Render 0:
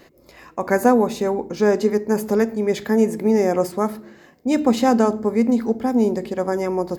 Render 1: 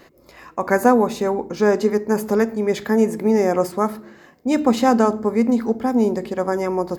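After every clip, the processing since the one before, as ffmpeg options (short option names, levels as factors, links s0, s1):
-af "equalizer=f=1200:t=o:w=0.98:g=4"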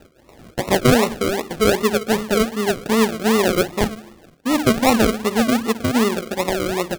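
-af "acrusher=samples=39:mix=1:aa=0.000001:lfo=1:lforange=23.4:lforate=2.6"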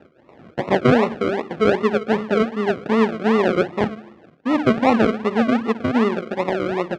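-af "highpass=120,lowpass=2300"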